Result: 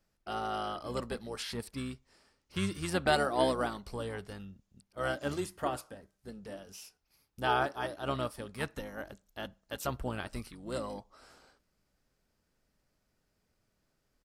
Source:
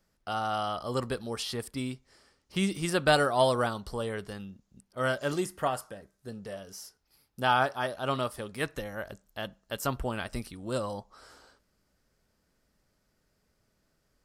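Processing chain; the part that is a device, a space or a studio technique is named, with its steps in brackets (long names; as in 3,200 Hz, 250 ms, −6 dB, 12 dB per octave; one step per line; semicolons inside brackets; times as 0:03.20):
octave pedal (pitch-shifted copies added −12 semitones −7 dB)
level −5 dB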